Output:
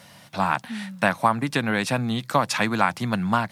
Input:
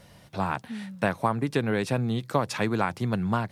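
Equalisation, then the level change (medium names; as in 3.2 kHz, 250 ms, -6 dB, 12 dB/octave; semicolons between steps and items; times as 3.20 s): Bessel high-pass 210 Hz, order 2; peaking EQ 410 Hz -11.5 dB 0.83 oct; +8.0 dB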